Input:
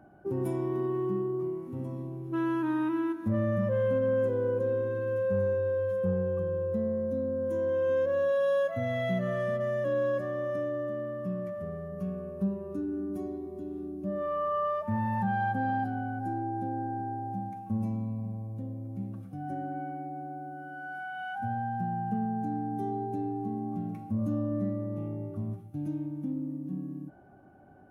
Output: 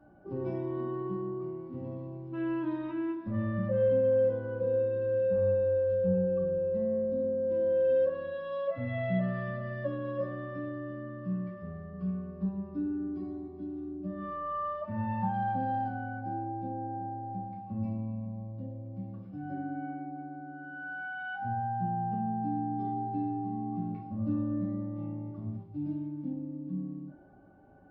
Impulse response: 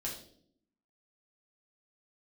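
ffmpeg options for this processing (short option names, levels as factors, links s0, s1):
-filter_complex "[1:a]atrim=start_sample=2205,asetrate=74970,aresample=44100[s0];[0:a][s0]afir=irnorm=-1:irlink=0,aresample=11025,aresample=44100"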